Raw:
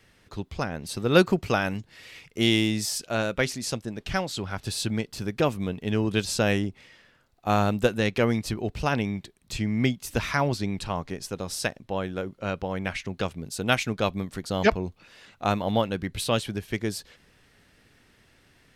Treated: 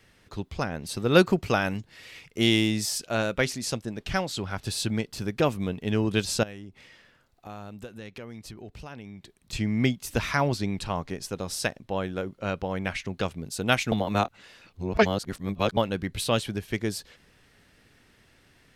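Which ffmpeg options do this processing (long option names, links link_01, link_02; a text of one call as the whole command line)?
ffmpeg -i in.wav -filter_complex "[0:a]asettb=1/sr,asplit=3[link_01][link_02][link_03];[link_01]atrim=end=6.434[link_04];[link_02]atrim=start=6.43:end=9.53,asetpts=PTS-STARTPTS,afade=type=in:duration=0.004:curve=qsin,afade=type=out:start_time=3.096:duration=0.004:curve=qsin,acompressor=threshold=-43dB:ratio=3:attack=3.2:release=140:knee=1:detection=peak[link_05];[link_03]atrim=start=9.526[link_06];[link_04][link_05]acrossfade=duration=0.004:curve1=hsin:curve2=qsin[link_07];[link_07][link_06]acrossfade=duration=0.004:curve1=qsin:curve2=hsin,asplit=3[link_08][link_09][link_10];[link_08]atrim=end=13.922[link_11];[link_09]atrim=start=13.918:end=15.772,asetpts=PTS-STARTPTS,areverse[link_12];[link_10]atrim=start=15.768[link_13];[link_11][link_12]acrossfade=duration=0.004:curve1=hsin:curve2=hsin[link_14];[link_14][link_13]acrossfade=duration=0.004:curve1=hsin:curve2=hsin" out.wav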